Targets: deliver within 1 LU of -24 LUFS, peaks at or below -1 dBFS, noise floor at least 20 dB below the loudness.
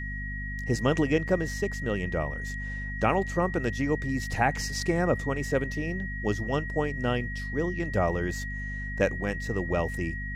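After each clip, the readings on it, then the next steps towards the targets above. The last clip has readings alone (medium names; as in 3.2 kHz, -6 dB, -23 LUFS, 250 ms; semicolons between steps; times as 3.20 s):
hum 50 Hz; highest harmonic 250 Hz; hum level -33 dBFS; steady tone 1.9 kHz; tone level -36 dBFS; loudness -29.0 LUFS; peak level -10.5 dBFS; loudness target -24.0 LUFS
-> hum notches 50/100/150/200/250 Hz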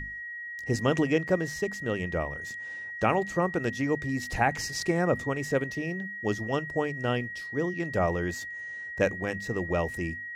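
hum not found; steady tone 1.9 kHz; tone level -36 dBFS
-> band-stop 1.9 kHz, Q 30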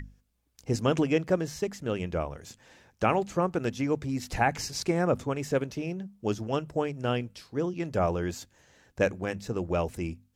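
steady tone not found; loudness -30.0 LUFS; peak level -11.0 dBFS; loudness target -24.0 LUFS
-> trim +6 dB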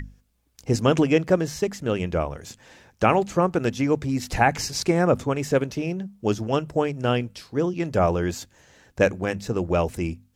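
loudness -24.0 LUFS; peak level -5.0 dBFS; noise floor -64 dBFS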